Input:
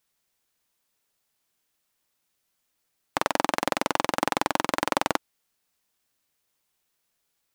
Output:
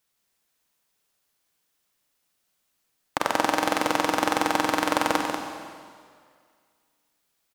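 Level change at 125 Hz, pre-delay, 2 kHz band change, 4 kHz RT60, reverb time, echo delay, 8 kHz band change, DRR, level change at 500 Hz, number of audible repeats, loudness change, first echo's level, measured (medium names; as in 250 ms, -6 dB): +0.5 dB, 29 ms, +3.0 dB, 1.9 s, 2.0 s, 191 ms, +2.5 dB, 1.5 dB, +2.5 dB, 1, +2.5 dB, -7.0 dB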